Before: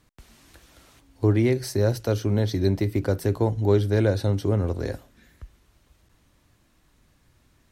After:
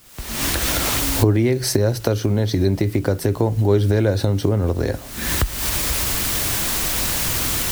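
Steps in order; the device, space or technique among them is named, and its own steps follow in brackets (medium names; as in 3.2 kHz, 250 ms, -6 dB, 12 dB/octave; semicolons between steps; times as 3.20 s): cheap recorder with automatic gain (white noise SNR 30 dB; recorder AGC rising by 65 dB/s); trim +3 dB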